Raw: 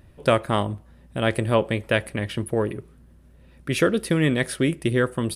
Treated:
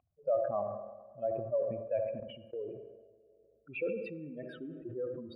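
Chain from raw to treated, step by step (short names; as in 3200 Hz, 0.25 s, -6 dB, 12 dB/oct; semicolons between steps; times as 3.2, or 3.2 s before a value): spectral contrast raised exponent 3.5; vowel filter a; air absorption 220 m; digital reverb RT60 2.9 s, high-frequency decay 0.35×, pre-delay 15 ms, DRR 15 dB; 2.2–2.73 gate -47 dBFS, range -15 dB; bell 2800 Hz +3.5 dB 0.6 oct; darkening echo 73 ms, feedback 50%, low-pass 800 Hz, level -11.5 dB; sustainer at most 49 dB/s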